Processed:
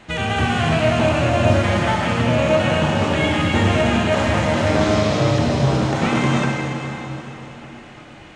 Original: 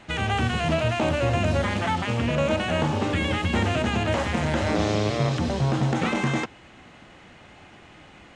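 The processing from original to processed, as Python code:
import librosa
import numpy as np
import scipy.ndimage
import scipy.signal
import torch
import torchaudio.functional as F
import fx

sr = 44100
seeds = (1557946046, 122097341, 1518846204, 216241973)

y = fx.rev_plate(x, sr, seeds[0], rt60_s=3.8, hf_ratio=0.85, predelay_ms=0, drr_db=-1.5)
y = y * librosa.db_to_amplitude(2.5)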